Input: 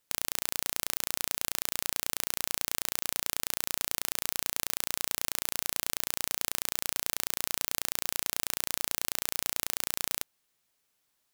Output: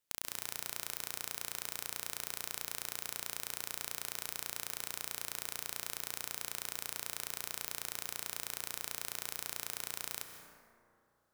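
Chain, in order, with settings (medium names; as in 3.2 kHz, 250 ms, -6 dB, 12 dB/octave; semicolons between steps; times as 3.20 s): plate-style reverb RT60 2.6 s, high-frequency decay 0.35×, pre-delay 120 ms, DRR 6 dB; trim -8.5 dB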